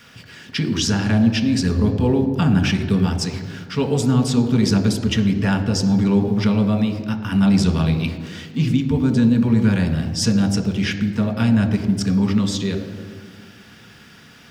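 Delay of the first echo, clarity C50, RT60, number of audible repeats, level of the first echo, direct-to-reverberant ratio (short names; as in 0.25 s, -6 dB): none, 9.5 dB, 1.8 s, none, none, 5.0 dB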